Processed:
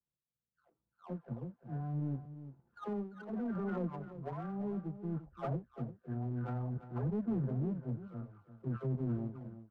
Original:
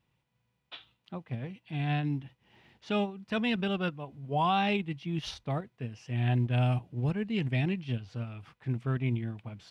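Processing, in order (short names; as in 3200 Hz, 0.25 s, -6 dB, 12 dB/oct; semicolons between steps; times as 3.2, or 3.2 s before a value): spectral delay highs early, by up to 0.784 s; steep low-pass 1500 Hz 96 dB/oct; limiter -29.5 dBFS, peak gain reduction 11 dB; rotary speaker horn 0.7 Hz; power-law curve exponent 1.4; on a send: echo 0.345 s -12.5 dB; on the sum: gain +3 dB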